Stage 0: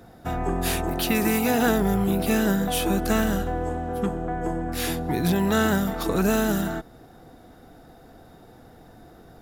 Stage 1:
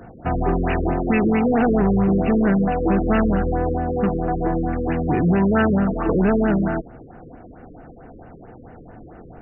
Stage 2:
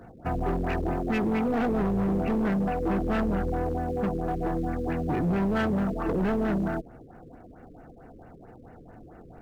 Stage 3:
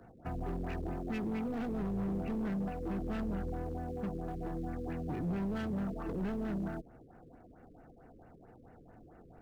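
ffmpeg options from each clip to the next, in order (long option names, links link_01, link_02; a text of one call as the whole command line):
ffmpeg -i in.wav -af "asoftclip=type=tanh:threshold=-18.5dB,afftfilt=real='re*lt(b*sr/1024,550*pow(3000/550,0.5+0.5*sin(2*PI*4.5*pts/sr)))':imag='im*lt(b*sr/1024,550*pow(3000/550,0.5+0.5*sin(2*PI*4.5*pts/sr)))':win_size=1024:overlap=0.75,volume=7.5dB" out.wav
ffmpeg -i in.wav -filter_complex "[0:a]asplit=2[link_01][link_02];[link_02]acrusher=bits=4:mode=log:mix=0:aa=0.000001,volume=-12dB[link_03];[link_01][link_03]amix=inputs=2:normalize=0,volume=14dB,asoftclip=hard,volume=-14dB,volume=-8.5dB" out.wav
ffmpeg -i in.wav -filter_complex "[0:a]acrossover=split=320|3000[link_01][link_02][link_03];[link_02]acompressor=threshold=-35dB:ratio=3[link_04];[link_01][link_04][link_03]amix=inputs=3:normalize=0,volume=-8.5dB" out.wav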